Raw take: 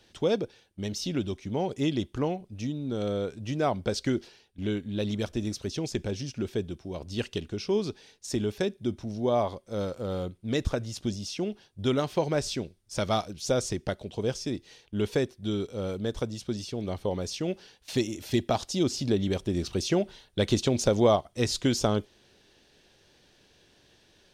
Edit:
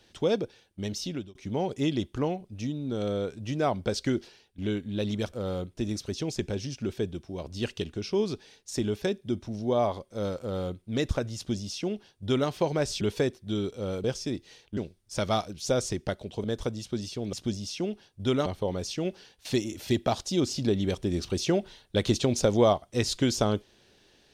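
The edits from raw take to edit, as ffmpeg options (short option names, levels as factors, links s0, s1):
-filter_complex "[0:a]asplit=10[s0][s1][s2][s3][s4][s5][s6][s7][s8][s9];[s0]atrim=end=1.35,asetpts=PTS-STARTPTS,afade=t=out:st=0.86:d=0.49:c=qsin[s10];[s1]atrim=start=1.35:end=5.332,asetpts=PTS-STARTPTS,afade=t=in:d=0.004:c=hsin[s11];[s2]atrim=start=9.968:end=10.412[s12];[s3]atrim=start=5.328:end=12.572[s13];[s4]atrim=start=14.968:end=16.002[s14];[s5]atrim=start=14.238:end=14.972[s15];[s6]atrim=start=12.568:end=14.242[s16];[s7]atrim=start=15.998:end=16.892[s17];[s8]atrim=start=10.918:end=12.052[s18];[s9]atrim=start=16.888[s19];[s10][s11]concat=n=2:v=0:a=1[s20];[s20][s12]acrossfade=d=0.004:c1=hsin:c2=hsin[s21];[s21][s13]acrossfade=d=0.004:c1=hsin:c2=hsin[s22];[s22][s14]acrossfade=d=0.004:c1=hsin:c2=hsin[s23];[s23][s15]acrossfade=d=0.004:c1=hsin:c2=hsin[s24];[s24][s16]acrossfade=d=0.004:c1=hsin:c2=hsin[s25];[s25][s17]acrossfade=d=0.004:c1=hsin:c2=hsin[s26];[s26][s18]acrossfade=d=0.004:c1=hsin:c2=hsin[s27];[s27][s19]acrossfade=d=0.004:c1=hsin:c2=hsin"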